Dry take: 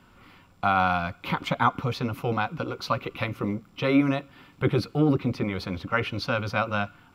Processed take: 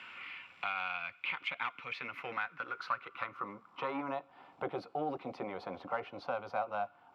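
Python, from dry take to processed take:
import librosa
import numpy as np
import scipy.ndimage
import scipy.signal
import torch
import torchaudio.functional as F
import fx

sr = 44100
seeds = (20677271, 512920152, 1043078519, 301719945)

y = fx.diode_clip(x, sr, knee_db=-14.0)
y = fx.filter_sweep_bandpass(y, sr, from_hz=2500.0, to_hz=750.0, start_s=1.75, end_s=4.44, q=3.6)
y = fx.band_squash(y, sr, depth_pct=70)
y = y * librosa.db_to_amplitude(1.0)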